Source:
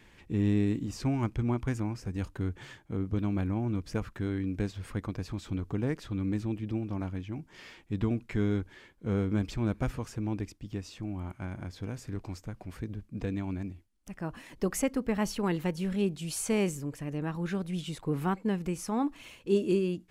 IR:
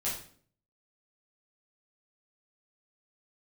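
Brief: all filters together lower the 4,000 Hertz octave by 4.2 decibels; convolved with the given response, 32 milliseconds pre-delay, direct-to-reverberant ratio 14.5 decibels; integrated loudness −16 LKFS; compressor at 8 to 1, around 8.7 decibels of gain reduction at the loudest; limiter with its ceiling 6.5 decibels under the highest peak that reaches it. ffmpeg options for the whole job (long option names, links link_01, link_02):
-filter_complex "[0:a]equalizer=frequency=4000:width_type=o:gain=-6,acompressor=threshold=-31dB:ratio=8,alimiter=level_in=3.5dB:limit=-24dB:level=0:latency=1,volume=-3.5dB,asplit=2[link_01][link_02];[1:a]atrim=start_sample=2205,adelay=32[link_03];[link_02][link_03]afir=irnorm=-1:irlink=0,volume=-19dB[link_04];[link_01][link_04]amix=inputs=2:normalize=0,volume=22.5dB"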